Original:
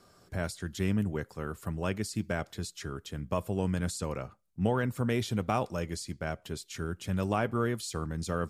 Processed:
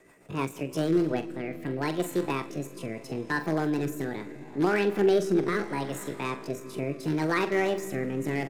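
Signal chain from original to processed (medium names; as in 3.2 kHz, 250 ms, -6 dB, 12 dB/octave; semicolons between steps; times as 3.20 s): in parallel at -11 dB: integer overflow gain 21.5 dB; on the sum: fifteen-band graphic EQ 250 Hz +10 dB, 1 kHz +6 dB, 10 kHz -9 dB; reverberation RT60 4.8 s, pre-delay 10 ms, DRR 12 dB; pitch shift +8.5 st; doubling 44 ms -10.5 dB; rotary cabinet horn 6.7 Hz, later 0.75 Hz, at 0.37 s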